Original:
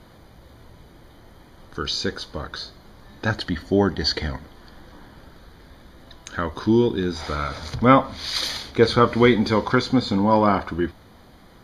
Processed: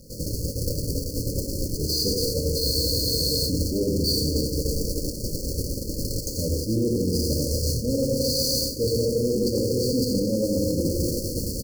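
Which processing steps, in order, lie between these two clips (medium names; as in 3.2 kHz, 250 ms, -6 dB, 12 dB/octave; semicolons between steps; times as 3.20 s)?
jump at every zero crossing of -23 dBFS; peaking EQ 340 Hz -5 dB 0.28 oct; FDN reverb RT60 2.7 s, low-frequency decay 0.8×, high-frequency decay 0.55×, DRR 1 dB; power-law waveshaper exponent 0.35; on a send: delay 88 ms -4.5 dB; on the sum: gate -6 dBFS, range -33 dB; brick-wall FIR band-stop 600–4200 Hz; reverse; compression 6:1, threshold -18 dBFS, peak gain reduction 15 dB; reverse; spectral freeze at 2.65 s, 0.82 s; trim -3.5 dB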